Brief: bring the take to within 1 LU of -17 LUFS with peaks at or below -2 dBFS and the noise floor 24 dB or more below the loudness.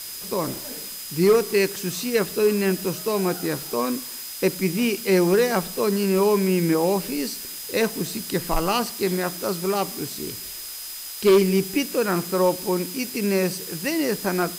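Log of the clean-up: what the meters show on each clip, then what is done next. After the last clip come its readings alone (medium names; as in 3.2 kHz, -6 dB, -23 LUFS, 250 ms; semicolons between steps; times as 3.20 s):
steady tone 5 kHz; tone level -40 dBFS; noise floor -35 dBFS; noise floor target -47 dBFS; loudness -23.0 LUFS; peak level -9.5 dBFS; loudness target -17.0 LUFS
-> band-stop 5 kHz, Q 30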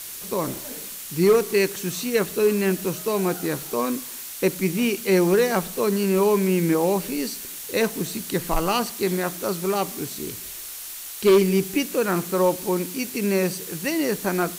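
steady tone not found; noise floor -36 dBFS; noise floor target -48 dBFS
-> noise print and reduce 12 dB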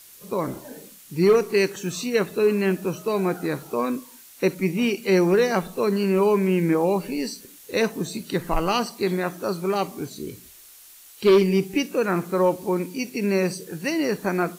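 noise floor -48 dBFS; loudness -23.5 LUFS; peak level -10.5 dBFS; loudness target -17.0 LUFS
-> trim +6.5 dB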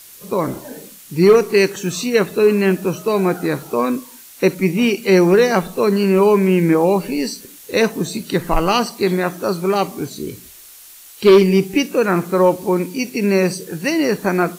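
loudness -17.0 LUFS; peak level -4.0 dBFS; noise floor -41 dBFS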